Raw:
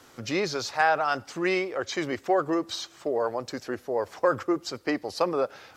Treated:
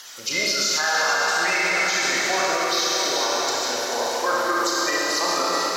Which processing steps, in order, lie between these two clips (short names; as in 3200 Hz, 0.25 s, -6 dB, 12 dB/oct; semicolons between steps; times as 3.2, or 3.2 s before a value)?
bin magnitudes rounded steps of 30 dB; tilt +4.5 dB/oct; on a send: echo with dull and thin repeats by turns 0.218 s, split 2000 Hz, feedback 80%, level -7 dB; on the sum: Schroeder reverb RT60 3.4 s, combs from 26 ms, DRR -5.5 dB; limiter -12 dBFS, peak gain reduction 8 dB; mismatched tape noise reduction encoder only